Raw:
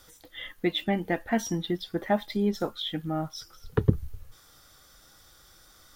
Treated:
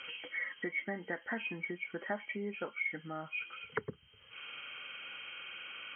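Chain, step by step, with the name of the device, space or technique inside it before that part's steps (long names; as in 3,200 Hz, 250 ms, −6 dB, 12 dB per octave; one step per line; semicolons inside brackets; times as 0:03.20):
hearing aid with frequency lowering (hearing-aid frequency compression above 1,900 Hz 4 to 1; downward compressor 2.5 to 1, threshold −45 dBFS, peak gain reduction 20.5 dB; loudspeaker in its box 290–6,600 Hz, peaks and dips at 320 Hz −7 dB, 720 Hz −8 dB, 1,500 Hz +6 dB, 3,800 Hz −5 dB)
level +6.5 dB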